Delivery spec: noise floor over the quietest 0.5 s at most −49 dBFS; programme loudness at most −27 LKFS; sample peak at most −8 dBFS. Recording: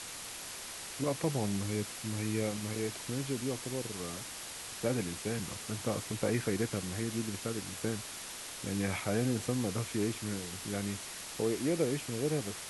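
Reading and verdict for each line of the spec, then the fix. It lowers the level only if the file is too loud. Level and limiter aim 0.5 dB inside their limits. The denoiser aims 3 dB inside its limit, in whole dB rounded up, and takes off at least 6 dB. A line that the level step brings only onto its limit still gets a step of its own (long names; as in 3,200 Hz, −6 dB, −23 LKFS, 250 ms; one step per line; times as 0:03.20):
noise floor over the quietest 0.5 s −44 dBFS: out of spec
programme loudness −35.5 LKFS: in spec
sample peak −17.5 dBFS: in spec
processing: broadband denoise 8 dB, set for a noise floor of −44 dBFS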